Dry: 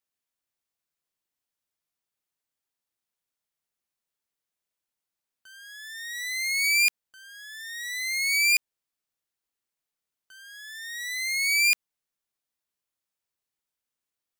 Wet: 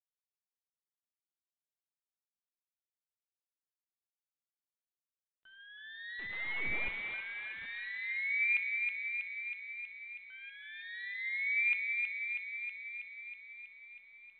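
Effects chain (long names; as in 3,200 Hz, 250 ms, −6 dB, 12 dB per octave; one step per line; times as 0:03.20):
0:06.19–0:07.66: linear delta modulator 32 kbit/s, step −35.5 dBFS
noise reduction from a noise print of the clip's start 11 dB
feedback echo with a high-pass in the loop 321 ms, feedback 77%, high-pass 1,100 Hz, level −3.5 dB
on a send at −11.5 dB: convolution reverb, pre-delay 3 ms
on the sum: level −8 dB
mu-law 64 kbit/s 8,000 Hz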